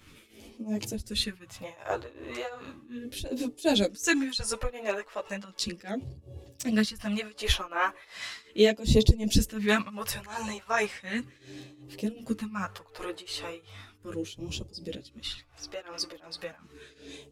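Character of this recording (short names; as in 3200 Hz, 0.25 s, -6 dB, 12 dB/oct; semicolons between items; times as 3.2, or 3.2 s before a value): phasing stages 2, 0.36 Hz, lowest notch 180–1400 Hz; tremolo triangle 2.7 Hz, depth 90%; a shimmering, thickened sound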